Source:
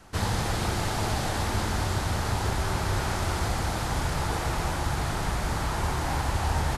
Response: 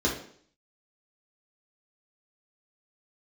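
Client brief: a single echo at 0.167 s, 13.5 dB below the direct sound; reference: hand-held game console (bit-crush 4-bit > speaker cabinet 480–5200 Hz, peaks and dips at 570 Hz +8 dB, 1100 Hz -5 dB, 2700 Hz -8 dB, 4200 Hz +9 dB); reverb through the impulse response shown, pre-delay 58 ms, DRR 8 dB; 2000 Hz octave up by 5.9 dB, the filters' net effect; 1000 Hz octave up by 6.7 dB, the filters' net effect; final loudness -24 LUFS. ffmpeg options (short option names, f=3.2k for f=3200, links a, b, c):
-filter_complex "[0:a]equalizer=f=1k:t=o:g=9,equalizer=f=2k:t=o:g=5.5,aecho=1:1:167:0.211,asplit=2[a][b];[1:a]atrim=start_sample=2205,adelay=58[c];[b][c]afir=irnorm=-1:irlink=0,volume=-19.5dB[d];[a][d]amix=inputs=2:normalize=0,acrusher=bits=3:mix=0:aa=0.000001,highpass=480,equalizer=f=570:t=q:w=4:g=8,equalizer=f=1.1k:t=q:w=4:g=-5,equalizer=f=2.7k:t=q:w=4:g=-8,equalizer=f=4.2k:t=q:w=4:g=9,lowpass=f=5.2k:w=0.5412,lowpass=f=5.2k:w=1.3066,volume=-1dB"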